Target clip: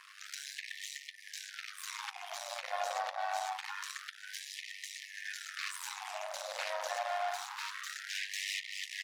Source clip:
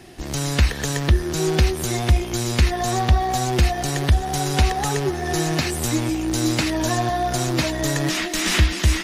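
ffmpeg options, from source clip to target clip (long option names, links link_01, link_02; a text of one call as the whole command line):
ffmpeg -i in.wav -filter_complex "[0:a]asplit=2[link_01][link_02];[link_02]adelay=1283,volume=-15dB,highshelf=frequency=4000:gain=-28.9[link_03];[link_01][link_03]amix=inputs=2:normalize=0,aeval=exprs='max(val(0),0)':channel_layout=same,flanger=delay=3.6:depth=1.2:regen=-84:speed=1.4:shape=sinusoidal,acompressor=threshold=-29dB:ratio=6,tremolo=f=98:d=0.824,asettb=1/sr,asplit=3[link_04][link_05][link_06];[link_04]atrim=end=6.964[link_07];[link_05]atrim=start=6.96:end=7.93,asetpts=PTS-STARTPTS,afade=type=in:duration=0.004:curve=qsin,afade=type=out:start_time=0.966:duration=0.004:curve=qsin,volume=35dB,asoftclip=hard,volume=-35dB[link_08];[link_06]atrim=start=7.926[link_09];[link_07][link_08]acrossfade=duration=0.004:curve1=hsin:curve2=qsin[link_10];[link_10][link_09]acrossfade=duration=0.004:curve1=qsin:curve2=hsin,lowpass=frequency=2800:poles=1,alimiter=level_in=7dB:limit=-24dB:level=0:latency=1:release=12,volume=-7dB,afftfilt=real='re*gte(b*sr/1024,490*pow(1800/490,0.5+0.5*sin(2*PI*0.26*pts/sr)))':imag='im*gte(b*sr/1024,490*pow(1800/490,0.5+0.5*sin(2*PI*0.26*pts/sr)))':win_size=1024:overlap=0.75,volume=10.5dB" out.wav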